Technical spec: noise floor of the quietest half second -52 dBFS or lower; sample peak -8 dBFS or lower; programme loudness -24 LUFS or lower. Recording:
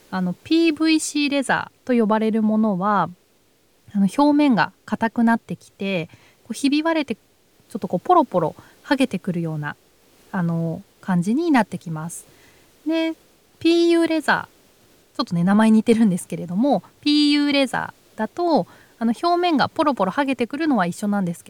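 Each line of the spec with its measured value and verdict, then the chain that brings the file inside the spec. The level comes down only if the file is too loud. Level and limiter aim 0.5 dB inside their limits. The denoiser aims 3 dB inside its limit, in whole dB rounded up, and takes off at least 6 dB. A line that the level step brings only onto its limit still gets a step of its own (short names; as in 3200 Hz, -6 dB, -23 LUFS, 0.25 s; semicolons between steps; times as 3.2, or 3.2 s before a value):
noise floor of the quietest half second -59 dBFS: OK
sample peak -3.5 dBFS: fail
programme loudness -20.5 LUFS: fail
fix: gain -4 dB; limiter -8.5 dBFS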